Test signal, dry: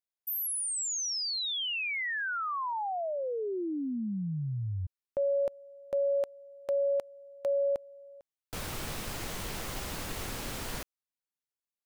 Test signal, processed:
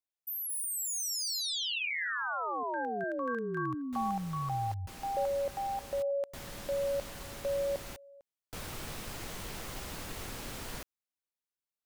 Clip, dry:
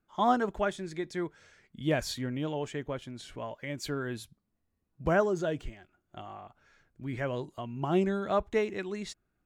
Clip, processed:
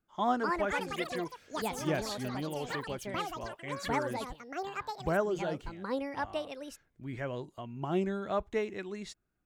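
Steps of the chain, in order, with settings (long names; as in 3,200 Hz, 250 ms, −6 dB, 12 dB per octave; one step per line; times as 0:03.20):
delay with pitch and tempo change per echo 304 ms, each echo +6 semitones, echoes 3
level −4 dB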